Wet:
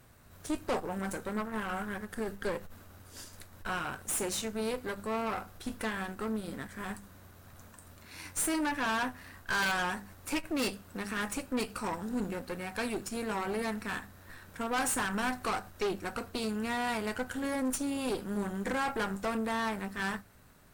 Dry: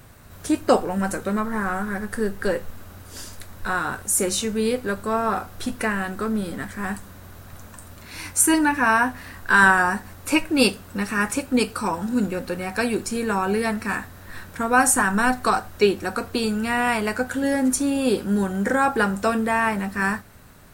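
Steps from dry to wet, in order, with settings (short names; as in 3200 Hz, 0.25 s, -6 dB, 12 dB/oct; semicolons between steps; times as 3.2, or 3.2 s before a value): wrapped overs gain 4.5 dB; notches 50/100/150/200 Hz; tube stage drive 22 dB, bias 0.8; gain -5.5 dB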